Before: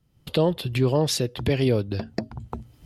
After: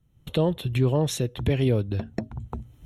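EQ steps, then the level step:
Butterworth band-reject 4,800 Hz, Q 4
low-shelf EQ 150 Hz +8 dB
−3.5 dB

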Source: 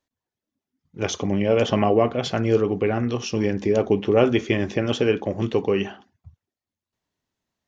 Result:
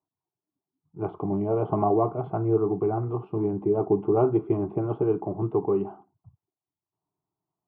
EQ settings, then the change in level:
high-pass filter 63 Hz
inverse Chebyshev low-pass filter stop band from 5,700 Hz, stop band 70 dB
phaser with its sweep stopped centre 350 Hz, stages 8
0.0 dB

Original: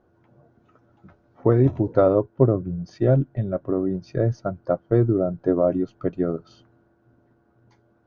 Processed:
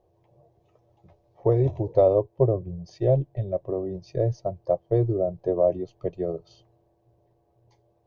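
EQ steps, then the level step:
phaser with its sweep stopped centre 590 Hz, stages 4
0.0 dB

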